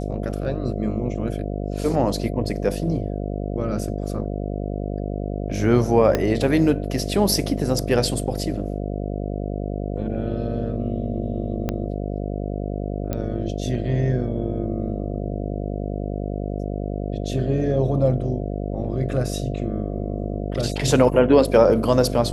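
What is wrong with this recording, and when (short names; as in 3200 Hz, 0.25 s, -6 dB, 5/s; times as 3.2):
buzz 50 Hz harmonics 14 -27 dBFS
6.15 pop -7 dBFS
11.69 pop -11 dBFS
13.13 pop -12 dBFS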